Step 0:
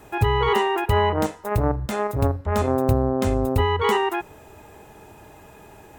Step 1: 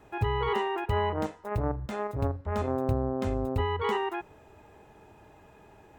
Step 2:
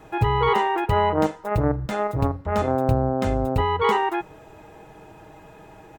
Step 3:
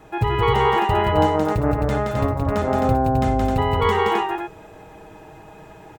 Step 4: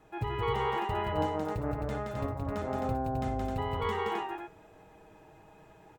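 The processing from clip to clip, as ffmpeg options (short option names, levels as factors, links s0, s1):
-af "equalizer=f=13000:w=0.43:g=-12.5,volume=0.398"
-af "aecho=1:1:6.3:0.43,volume=2.51"
-af "aecho=1:1:58.31|172|262.4:0.282|0.708|0.631"
-af "flanger=delay=4:depth=6.8:regen=88:speed=1:shape=sinusoidal,volume=0.376"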